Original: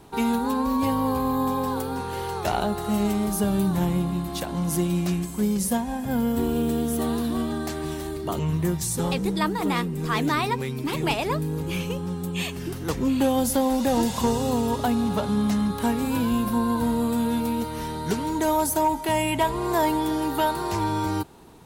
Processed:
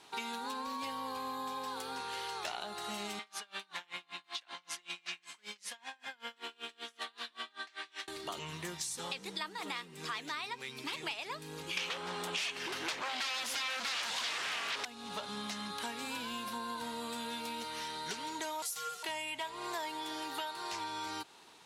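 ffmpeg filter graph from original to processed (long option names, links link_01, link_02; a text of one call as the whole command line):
ffmpeg -i in.wav -filter_complex "[0:a]asettb=1/sr,asplit=3[link_01][link_02][link_03];[link_01]atrim=end=3.194[link_04];[link_02]atrim=start=3.19:end=8.08,asetpts=PTS-STARTPTS,afade=type=in:duration=0.004:curve=qsin,afade=type=out:start_time=4.886:duration=0.004:curve=qsin,acontrast=81,bandpass=frequency=2100:width_type=q:width=1,aeval=exprs='val(0)*pow(10,-32*(0.5-0.5*cos(2*PI*5.2*n/s))/20)':channel_layout=same[link_05];[link_03]atrim=start=8.076[link_06];[link_04][link_05]acrossfade=duration=0.004:curve1=hsin:curve2=qsin[link_07];[link_07][link_06]acrossfade=duration=0.004:curve1=qsin:curve2=hsin,asettb=1/sr,asplit=3[link_08][link_09][link_10];[link_08]atrim=end=11.774[link_11];[link_09]atrim=start=11.77:end=14.85,asetpts=PTS-STARTPTS,afade=type=in:duration=0.004:curve=qsin,afade=type=out:start_time=3.076:duration=0.004:curve=qsin,bass=frequency=250:gain=-10,treble=frequency=4000:gain=-8,aeval=exprs='0.237*sin(PI/2*7.94*val(0)/0.237)':channel_layout=same[link_12];[link_10]atrim=start=14.846[link_13];[link_11][link_12]acrossfade=duration=0.004:curve1=hsin:curve2=qsin[link_14];[link_14][link_13]acrossfade=duration=0.004:curve1=qsin:curve2=hsin,asettb=1/sr,asplit=3[link_15][link_16][link_17];[link_15]atrim=end=18.624[link_18];[link_16]atrim=start=18.62:end=19.03,asetpts=PTS-STARTPTS,afade=type=in:duration=0.004:curve=qsin,afade=type=out:start_time=0.406:duration=0.004:curve=qsin,tiltshelf=frequency=1500:gain=-9.5,aeval=exprs='val(0)*sin(2*PI*460*n/s)':channel_layout=same,asplit=2[link_19][link_20];[link_20]adelay=15,volume=-5dB[link_21];[link_19][link_21]amix=inputs=2:normalize=0,atrim=end_sample=18081[link_22];[link_17]atrim=start=19.026[link_23];[link_18][link_22]acrossfade=duration=0.004:curve1=hsin:curve2=qsin[link_24];[link_24][link_23]acrossfade=duration=0.004:curve1=qsin:curve2=hsin,lowpass=3800,aderivative,acompressor=threshold=-48dB:ratio=5,volume=11dB" out.wav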